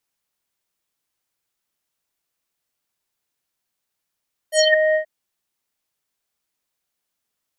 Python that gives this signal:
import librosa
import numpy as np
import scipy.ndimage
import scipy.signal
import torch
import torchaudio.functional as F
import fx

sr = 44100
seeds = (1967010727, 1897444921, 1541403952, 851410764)

y = fx.sub_voice(sr, note=75, wave='square', cutoff_hz=1600.0, q=7.2, env_oct=3.0, env_s=0.23, attack_ms=75.0, decay_s=0.05, sustain_db=-4.0, release_s=0.1, note_s=0.43, slope=24)